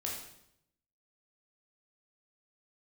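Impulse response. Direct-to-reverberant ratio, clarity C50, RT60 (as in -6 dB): -3.0 dB, 2.5 dB, 0.75 s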